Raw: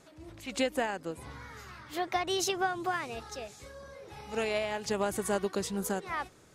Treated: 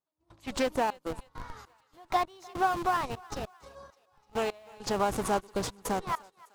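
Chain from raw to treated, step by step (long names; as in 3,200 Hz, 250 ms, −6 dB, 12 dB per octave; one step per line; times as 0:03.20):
noise gate −47 dBFS, range −12 dB
graphic EQ with 10 bands 1,000 Hz +10 dB, 2,000 Hz −5 dB, 4,000 Hz +3 dB
in parallel at −4.5 dB: comparator with hysteresis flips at −33 dBFS
on the sum: gate pattern "..xxxx.x.xx...x" 100 BPM −24 dB
on a send: feedback echo with a high-pass in the loop 302 ms, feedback 49%, high-pass 520 Hz, level −22 dB
on the sum: highs frequency-modulated by the lows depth 0.28 ms
level −2.5 dB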